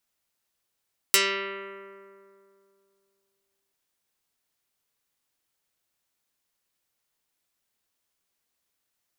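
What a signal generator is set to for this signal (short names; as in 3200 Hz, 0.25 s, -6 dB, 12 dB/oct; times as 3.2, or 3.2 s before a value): plucked string G3, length 2.58 s, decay 2.63 s, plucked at 0.24, dark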